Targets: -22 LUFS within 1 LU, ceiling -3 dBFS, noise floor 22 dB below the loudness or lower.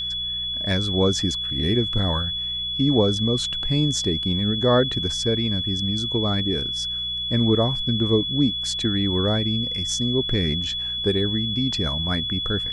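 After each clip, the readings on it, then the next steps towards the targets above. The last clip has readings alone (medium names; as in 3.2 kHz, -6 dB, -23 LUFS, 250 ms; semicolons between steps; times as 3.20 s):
hum 60 Hz; highest harmonic 180 Hz; hum level -40 dBFS; steady tone 3.4 kHz; tone level -25 dBFS; loudness -22.0 LUFS; peak level -6.5 dBFS; loudness target -22.0 LUFS
-> de-hum 60 Hz, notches 3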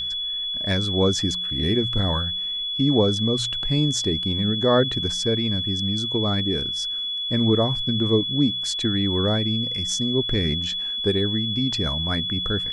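hum not found; steady tone 3.4 kHz; tone level -25 dBFS
-> band-stop 3.4 kHz, Q 30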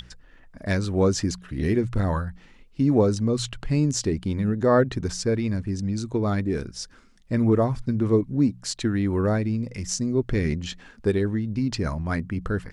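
steady tone not found; loudness -24.5 LUFS; peak level -7.5 dBFS; loudness target -22.0 LUFS
-> trim +2.5 dB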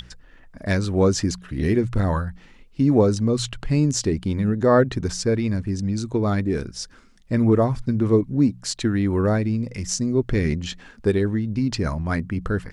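loudness -22.0 LUFS; peak level -5.0 dBFS; noise floor -50 dBFS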